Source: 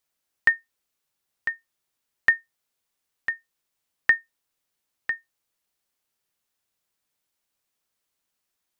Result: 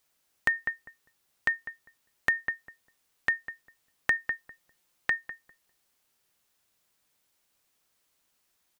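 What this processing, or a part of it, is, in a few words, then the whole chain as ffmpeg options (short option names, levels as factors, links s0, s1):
de-esser from a sidechain: -filter_complex "[0:a]asettb=1/sr,asplit=3[s0][s1][s2];[s0]atrim=end=4.164[s3];[s1]atrim=start=4.16:end=5.11,asetpts=PTS-STARTPTS,afade=t=in:d=0.004:c=qsin,afade=t=out:st=0.946:d=0.004:c=qsin,aecho=1:1:5.7:0.41,atrim=end_sample=41895[s4];[s2]atrim=start=5.106[s5];[s3][s4]acrossfade=d=0.004:c1=hsin:c2=qsin[s6];[s6][s5]acrossfade=d=0.004:c1=qsin:c2=hsin,asplit=2[s7][s8];[s8]adelay=200,lowpass=f=930:p=1,volume=0.237,asplit=2[s9][s10];[s10]adelay=200,lowpass=f=930:p=1,volume=0.23,asplit=2[s11][s12];[s12]adelay=200,lowpass=f=930:p=1,volume=0.23[s13];[s7][s9][s11][s13]amix=inputs=4:normalize=0,asplit=2[s14][s15];[s15]highpass=f=4000:p=1,apad=whole_len=414277[s16];[s14][s16]sidechaincompress=threshold=0.0251:ratio=8:attack=1.3:release=82,volume=2.11"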